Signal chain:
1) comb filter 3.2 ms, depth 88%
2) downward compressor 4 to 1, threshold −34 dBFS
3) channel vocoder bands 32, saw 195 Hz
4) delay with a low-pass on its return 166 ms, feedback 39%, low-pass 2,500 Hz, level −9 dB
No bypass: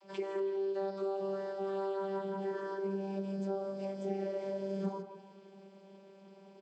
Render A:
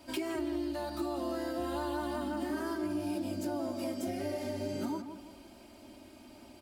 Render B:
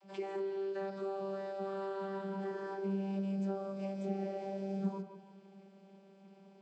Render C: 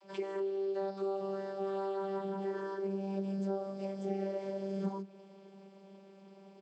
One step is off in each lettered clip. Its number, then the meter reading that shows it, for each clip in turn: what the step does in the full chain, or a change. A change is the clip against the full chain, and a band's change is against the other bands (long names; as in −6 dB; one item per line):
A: 3, 500 Hz band −8.5 dB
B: 1, change in momentary loudness spread −9 LU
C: 4, 125 Hz band +1.5 dB